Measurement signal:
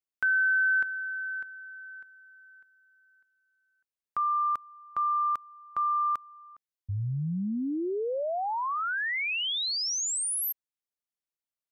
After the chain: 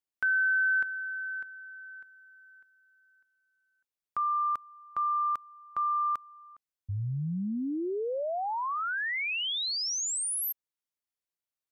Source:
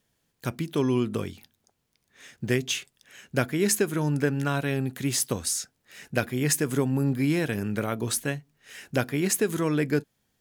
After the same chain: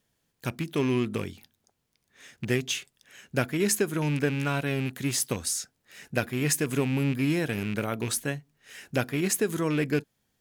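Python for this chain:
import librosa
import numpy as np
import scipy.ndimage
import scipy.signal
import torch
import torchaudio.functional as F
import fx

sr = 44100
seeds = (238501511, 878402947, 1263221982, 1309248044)

y = fx.rattle_buzz(x, sr, strikes_db=-27.0, level_db=-25.0)
y = y * 10.0 ** (-1.5 / 20.0)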